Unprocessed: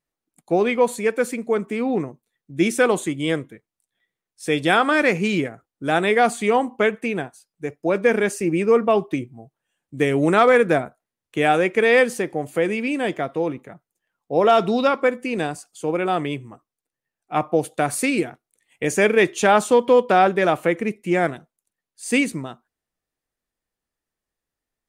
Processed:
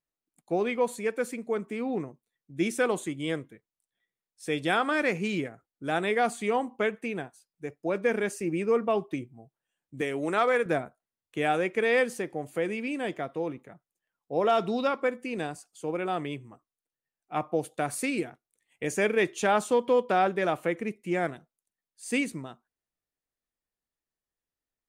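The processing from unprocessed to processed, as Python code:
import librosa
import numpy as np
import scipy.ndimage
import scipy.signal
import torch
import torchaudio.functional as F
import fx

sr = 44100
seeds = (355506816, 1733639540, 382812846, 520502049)

y = fx.highpass(x, sr, hz=370.0, slope=6, at=(10.01, 10.66))
y = y * librosa.db_to_amplitude(-8.5)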